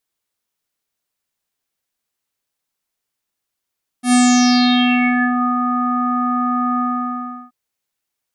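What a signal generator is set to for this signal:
subtractive voice square B3 24 dB per octave, low-pass 1,300 Hz, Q 6.3, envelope 3 octaves, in 1.39 s, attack 96 ms, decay 1.43 s, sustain −9.5 dB, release 0.72 s, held 2.76 s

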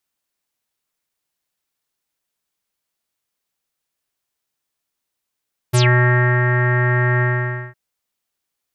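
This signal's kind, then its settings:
subtractive voice square B2 24 dB per octave, low-pass 1,800 Hz, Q 10, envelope 3 octaves, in 0.14 s, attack 18 ms, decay 0.67 s, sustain −4 dB, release 0.53 s, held 1.48 s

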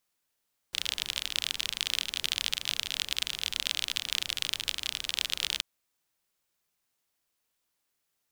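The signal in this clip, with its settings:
rain-like ticks over hiss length 4.88 s, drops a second 39, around 3,300 Hz, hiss −18 dB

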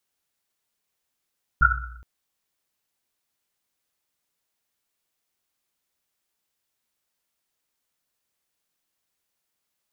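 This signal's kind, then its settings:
drum after Risset length 0.42 s, pitch 60 Hz, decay 1.11 s, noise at 1,400 Hz, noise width 160 Hz, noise 60%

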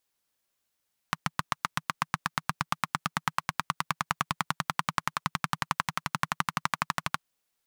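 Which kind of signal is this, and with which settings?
pulse-train model of a single-cylinder engine, changing speed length 6.07 s, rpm 900, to 1,500, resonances 160/1,100 Hz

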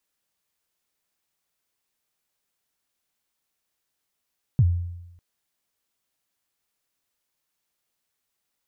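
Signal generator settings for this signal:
synth kick length 0.60 s, from 150 Hz, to 87 Hz, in 49 ms, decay 0.94 s, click off, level −12 dB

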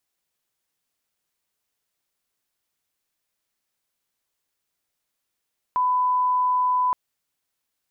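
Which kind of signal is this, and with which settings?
line-up tone −18 dBFS 1.17 s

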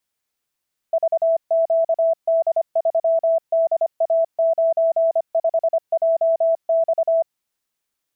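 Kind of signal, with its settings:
Morse code "VQD3DA95JX" 25 words per minute 658 Hz −14 dBFS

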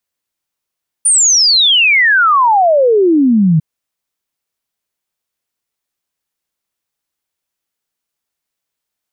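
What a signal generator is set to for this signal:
exponential sine sweep 9,500 Hz → 150 Hz 2.55 s −6.5 dBFS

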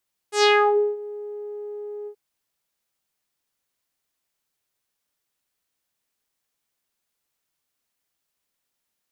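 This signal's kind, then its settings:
subtractive voice saw G#4 12 dB per octave, low-pass 450 Hz, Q 2.6, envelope 4.5 octaves, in 0.45 s, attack 113 ms, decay 0.53 s, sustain −23.5 dB, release 0.08 s, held 1.75 s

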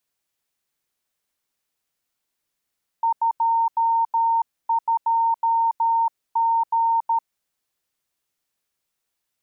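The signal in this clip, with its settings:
Morse code "22G" 13 words per minute 916 Hz −16.5 dBFS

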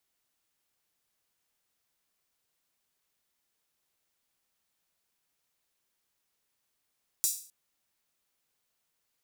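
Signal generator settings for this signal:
open synth hi-hat length 0.26 s, high-pass 6,600 Hz, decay 0.44 s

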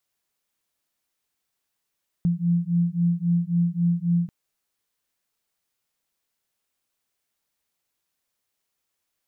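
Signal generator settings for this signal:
two tones that beat 170 Hz, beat 3.7 Hz, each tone −22.5 dBFS 2.04 s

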